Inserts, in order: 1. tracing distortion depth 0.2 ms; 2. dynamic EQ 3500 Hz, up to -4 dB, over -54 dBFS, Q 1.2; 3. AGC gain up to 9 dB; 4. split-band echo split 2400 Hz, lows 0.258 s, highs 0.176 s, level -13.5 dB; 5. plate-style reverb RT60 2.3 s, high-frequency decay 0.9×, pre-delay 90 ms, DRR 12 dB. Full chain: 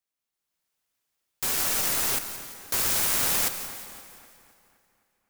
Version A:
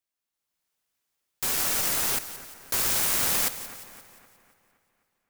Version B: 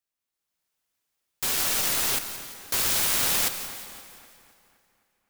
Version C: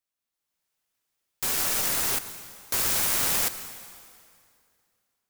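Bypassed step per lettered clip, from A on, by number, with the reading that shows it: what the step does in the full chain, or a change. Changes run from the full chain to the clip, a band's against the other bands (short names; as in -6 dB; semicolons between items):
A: 5, echo-to-direct -9.0 dB to -12.0 dB; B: 2, 4 kHz band +3.0 dB; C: 4, echo-to-direct -9.0 dB to -12.0 dB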